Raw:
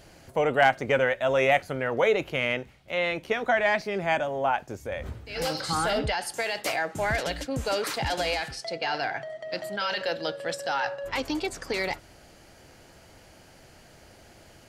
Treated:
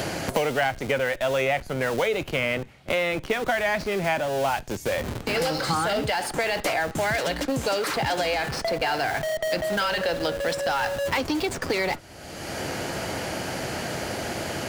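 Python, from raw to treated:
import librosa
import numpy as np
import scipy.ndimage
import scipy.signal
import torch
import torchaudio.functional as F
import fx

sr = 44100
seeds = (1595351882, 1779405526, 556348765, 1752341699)

p1 = scipy.signal.sosfilt(scipy.signal.butter(2, 66.0, 'highpass', fs=sr, output='sos'), x)
p2 = fx.schmitt(p1, sr, flips_db=-38.0)
p3 = p1 + (p2 * librosa.db_to_amplitude(-8.5))
y = fx.band_squash(p3, sr, depth_pct=100)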